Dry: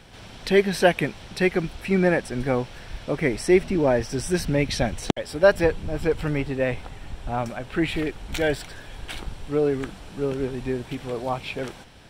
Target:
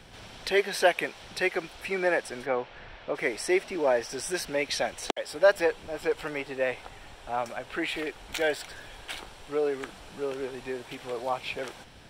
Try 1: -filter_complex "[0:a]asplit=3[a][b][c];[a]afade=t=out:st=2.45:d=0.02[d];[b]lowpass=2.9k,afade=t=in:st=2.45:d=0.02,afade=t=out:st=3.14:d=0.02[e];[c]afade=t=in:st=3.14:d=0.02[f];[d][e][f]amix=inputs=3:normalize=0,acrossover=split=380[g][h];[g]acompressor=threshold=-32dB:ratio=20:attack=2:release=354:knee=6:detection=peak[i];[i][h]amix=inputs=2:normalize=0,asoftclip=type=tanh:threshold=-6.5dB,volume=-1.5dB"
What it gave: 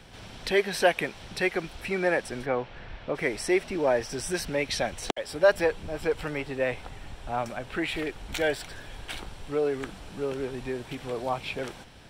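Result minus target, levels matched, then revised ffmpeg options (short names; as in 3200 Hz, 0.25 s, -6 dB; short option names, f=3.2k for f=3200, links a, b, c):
compressor: peak gain reduction -10.5 dB
-filter_complex "[0:a]asplit=3[a][b][c];[a]afade=t=out:st=2.45:d=0.02[d];[b]lowpass=2.9k,afade=t=in:st=2.45:d=0.02,afade=t=out:st=3.14:d=0.02[e];[c]afade=t=in:st=3.14:d=0.02[f];[d][e][f]amix=inputs=3:normalize=0,acrossover=split=380[g][h];[g]acompressor=threshold=-43dB:ratio=20:attack=2:release=354:knee=6:detection=peak[i];[i][h]amix=inputs=2:normalize=0,asoftclip=type=tanh:threshold=-6.5dB,volume=-1.5dB"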